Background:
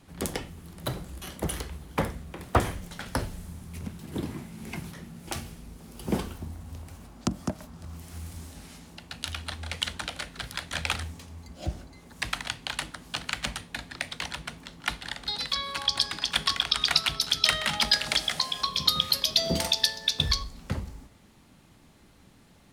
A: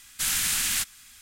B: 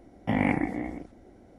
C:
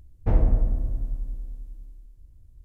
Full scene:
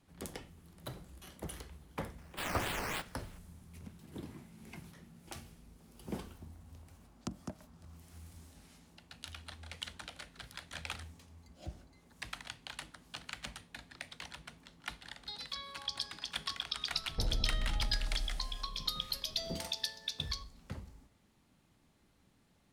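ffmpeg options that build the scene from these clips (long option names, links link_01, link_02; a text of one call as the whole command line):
ffmpeg -i bed.wav -i cue0.wav -i cue1.wav -i cue2.wav -filter_complex "[0:a]volume=-13dB[link_01];[1:a]acrusher=samples=10:mix=1:aa=0.000001:lfo=1:lforange=6:lforate=3.4[link_02];[3:a]acompressor=threshold=-24dB:ratio=6:attack=3.2:release=140:knee=1:detection=peak[link_03];[link_02]atrim=end=1.21,asetpts=PTS-STARTPTS,volume=-12dB,afade=type=in:duration=0.004:curve=hsin,afade=type=out:start_time=1.206:duration=0.004:curve=hsin,adelay=2180[link_04];[link_03]atrim=end=2.64,asetpts=PTS-STARTPTS,volume=-5.5dB,afade=type=in:duration=0.004:curve=hsin,afade=type=out:start_time=2.636:duration=0.004:curve=hsin,adelay=16920[link_05];[link_01][link_04][link_05]amix=inputs=3:normalize=0" out.wav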